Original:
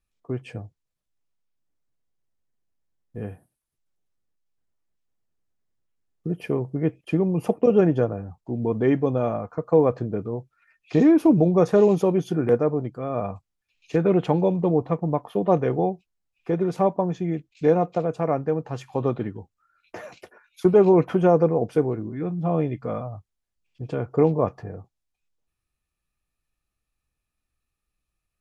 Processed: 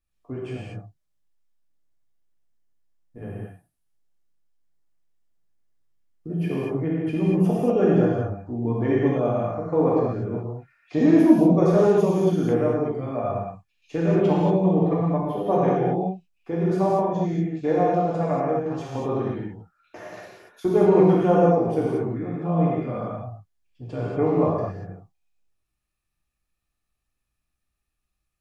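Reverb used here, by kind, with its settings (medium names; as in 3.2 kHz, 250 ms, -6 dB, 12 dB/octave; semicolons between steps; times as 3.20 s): gated-style reverb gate 260 ms flat, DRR -6.5 dB; trim -6.5 dB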